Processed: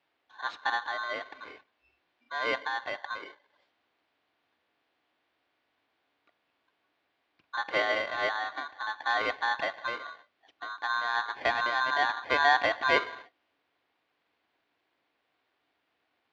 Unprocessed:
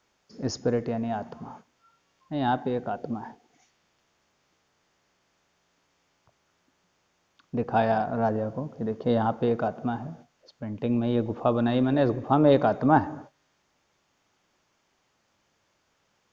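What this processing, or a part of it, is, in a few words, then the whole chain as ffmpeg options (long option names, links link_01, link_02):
ring modulator pedal into a guitar cabinet: -af "aeval=exprs='val(0)*sgn(sin(2*PI*1300*n/s))':channel_layout=same,highpass=110,equalizer=frequency=130:width_type=q:width=4:gain=-7,equalizer=frequency=190:width_type=q:width=4:gain=-9,equalizer=frequency=300:width_type=q:width=4:gain=6,equalizer=frequency=710:width_type=q:width=4:gain=4,lowpass=frequency=3800:width=0.5412,lowpass=frequency=3800:width=1.3066,volume=-5dB"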